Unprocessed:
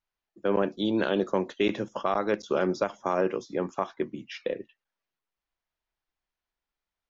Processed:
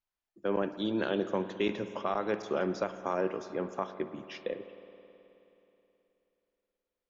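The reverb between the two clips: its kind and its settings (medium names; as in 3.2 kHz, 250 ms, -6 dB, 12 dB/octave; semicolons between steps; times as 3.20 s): spring tank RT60 3.2 s, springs 53 ms, chirp 50 ms, DRR 10.5 dB; trim -5 dB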